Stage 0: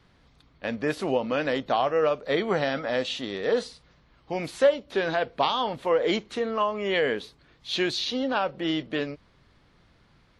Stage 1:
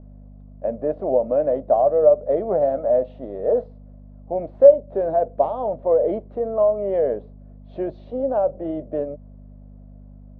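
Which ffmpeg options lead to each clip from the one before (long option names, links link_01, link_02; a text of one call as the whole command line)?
ffmpeg -i in.wav -af "aeval=exprs='val(0)+0.0141*(sin(2*PI*50*n/s)+sin(2*PI*2*50*n/s)/2+sin(2*PI*3*50*n/s)/3+sin(2*PI*4*50*n/s)/4+sin(2*PI*5*50*n/s)/5)':channel_layout=same,lowpass=frequency=620:width_type=q:width=6.8,equalizer=frequency=77:width_type=o:width=0.77:gain=-6.5,volume=-3dB" out.wav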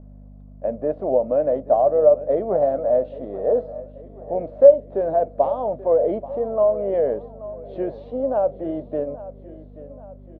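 ffmpeg -i in.wav -af "aecho=1:1:832|1664|2496|3328:0.15|0.0748|0.0374|0.0187" out.wav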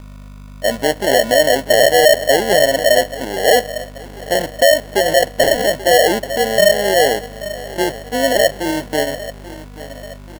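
ffmpeg -i in.wav -af "apsyclip=13dB,acrusher=samples=36:mix=1:aa=0.000001,volume=-5.5dB" out.wav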